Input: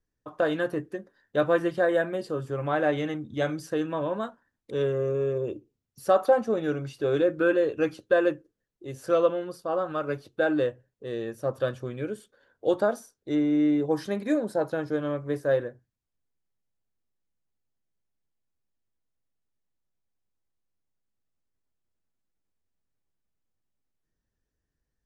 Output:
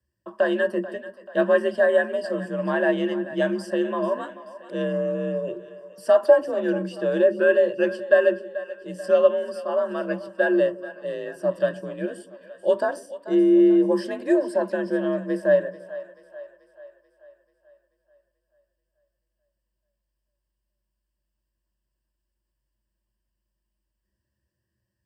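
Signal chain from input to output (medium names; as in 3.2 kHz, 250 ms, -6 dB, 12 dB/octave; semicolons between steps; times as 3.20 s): frequency shift +49 Hz; rippled EQ curve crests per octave 1.3, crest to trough 13 dB; two-band feedback delay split 470 Hz, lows 144 ms, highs 436 ms, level -15 dB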